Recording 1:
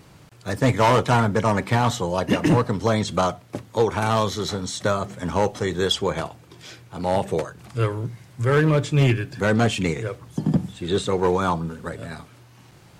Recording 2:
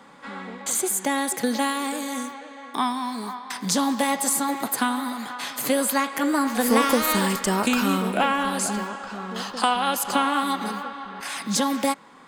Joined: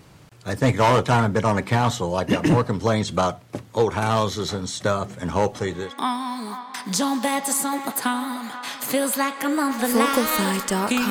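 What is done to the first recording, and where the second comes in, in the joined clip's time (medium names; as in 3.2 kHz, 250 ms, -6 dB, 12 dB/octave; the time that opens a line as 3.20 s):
recording 1
5.72 s: go over to recording 2 from 2.48 s, crossfade 0.44 s equal-power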